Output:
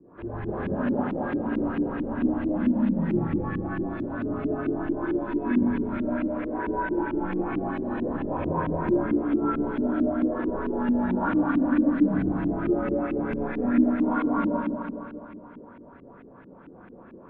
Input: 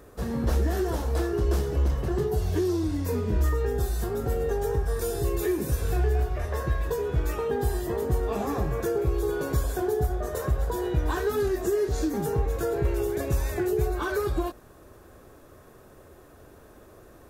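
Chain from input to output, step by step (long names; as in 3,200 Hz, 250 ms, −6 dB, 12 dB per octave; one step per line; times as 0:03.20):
single-sideband voice off tune −120 Hz 170–3,500 Hz
four-comb reverb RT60 2.7 s, combs from 33 ms, DRR −7.5 dB
auto-filter low-pass saw up 4.5 Hz 260–2,600 Hz
level −6 dB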